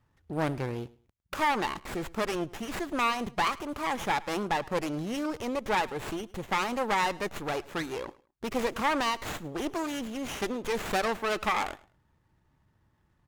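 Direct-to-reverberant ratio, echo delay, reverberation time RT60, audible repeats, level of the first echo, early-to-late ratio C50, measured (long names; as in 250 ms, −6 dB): no reverb audible, 106 ms, no reverb audible, 2, −21.5 dB, no reverb audible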